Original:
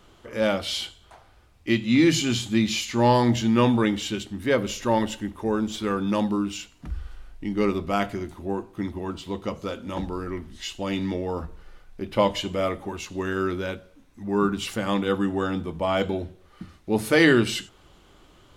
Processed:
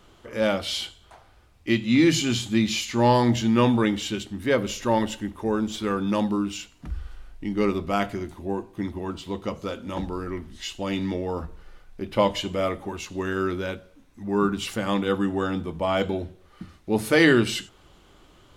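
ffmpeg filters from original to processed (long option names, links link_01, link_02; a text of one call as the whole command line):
ffmpeg -i in.wav -filter_complex "[0:a]asettb=1/sr,asplit=3[link_01][link_02][link_03];[link_01]atrim=end=8.354[link_04];[link_02]atrim=start=8.35:end=8.84,asetpts=PTS-STARTPTS,afade=type=in:duration=0.004:curve=qsin,afade=type=out:start_time=0.486:duration=0.004:curve=qsin,bandreject=frequency=1300:width=5.8[link_05];[link_03]atrim=start=8.836[link_06];[link_04][link_05]acrossfade=duration=0.004:curve1=hsin:curve2=qsin[link_07];[link_07][link_06]acrossfade=duration=0.004:curve1=qsin:curve2=hsin" out.wav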